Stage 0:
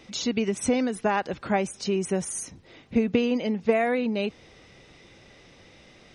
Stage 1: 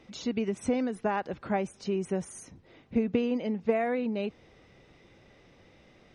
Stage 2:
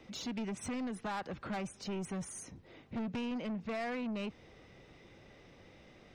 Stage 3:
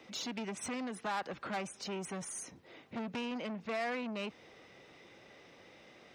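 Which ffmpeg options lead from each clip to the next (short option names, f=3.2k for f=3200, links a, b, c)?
-af "highshelf=f=2.8k:g=-10,volume=-4dB"
-filter_complex "[0:a]acrossover=split=310|680|4100[a][b][c][d];[b]acompressor=threshold=-44dB:ratio=6[e];[a][e][c][d]amix=inputs=4:normalize=0,asoftclip=type=tanh:threshold=-34.5dB"
-af "highpass=f=420:p=1,volume=3.5dB"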